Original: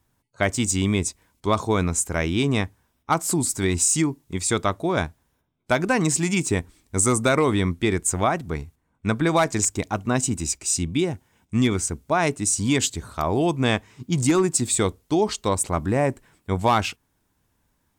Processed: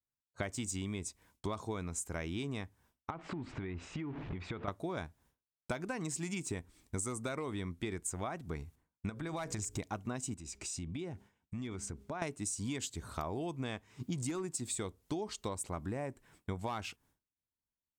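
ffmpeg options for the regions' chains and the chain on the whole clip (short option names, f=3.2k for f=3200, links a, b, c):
-filter_complex "[0:a]asettb=1/sr,asplit=3[a][b][c];[a]atrim=end=3.104[d];[b]atrim=start=3.1:end=4.68,asetpts=PTS-STARTPTS,afade=t=in:d=0.004:c=qsin,afade=t=out:st=1.576:d=0.004:c=qsin,aeval=exprs='val(0)+0.5*0.0211*sgn(val(0))':c=same,lowpass=f=2.7k:w=0.5412,lowpass=f=2.7k:w=1.3066,acompressor=threshold=-32dB:ratio=10:attack=3.2:release=140:knee=1:detection=peak[e];[c]atrim=start=4.676[f];[d][e]acrossfade=d=0.004:c1=hsin:c2=qsin[g];[g][f]acrossfade=d=0.004:c1=qsin:c2=hsin,asettb=1/sr,asplit=3[h][i][j];[h]atrim=end=9.094[k];[i]atrim=start=9.09:end=9.78,asetpts=PTS-STARTPTS,afade=t=in:d=0.004:c=qsin,afade=t=out:st=0.686:d=0.004:c=qsin,bandreject=f=60:t=h:w=6,bandreject=f=120:t=h:w=6,bandreject=f=180:t=h:w=6,bandreject=f=240:t=h:w=6,bandreject=f=300:t=h:w=6,bandreject=f=360:t=h:w=6,bandreject=f=420:t=h:w=6,bandreject=f=480:t=h:w=6,bandreject=f=540:t=h:w=6,asubboost=boost=11:cutoff=150,acompressor=threshold=-26dB:ratio=5:attack=3.2:release=140:knee=1:detection=peak[l];[j]atrim=start=9.776[m];[k][l]acrossfade=d=0.004:c1=hsin:c2=qsin[n];[n][m]acrossfade=d=0.004:c1=qsin:c2=hsin,asettb=1/sr,asplit=3[o][p][q];[o]atrim=end=10.344[r];[p]atrim=start=10.34:end=12.22,asetpts=PTS-STARTPTS,afade=t=in:d=0.004:c=qsin,afade=t=out:st=1.876:d=0.004:c=qsin,highshelf=f=7.6k:g=-11.5,bandreject=f=202.5:t=h:w=4,bandreject=f=405:t=h:w=4,acompressor=threshold=-36dB:ratio=4:attack=3.2:release=140:knee=1:detection=peak[s];[q]atrim=start=12.216[t];[r][s]acrossfade=d=0.004:c1=hsin:c2=qsin[u];[u][t]acrossfade=d=0.004:c1=qsin:c2=hsin,agate=range=-33dB:threshold=-51dB:ratio=3:detection=peak,acompressor=threshold=-33dB:ratio=8,volume=-2.5dB"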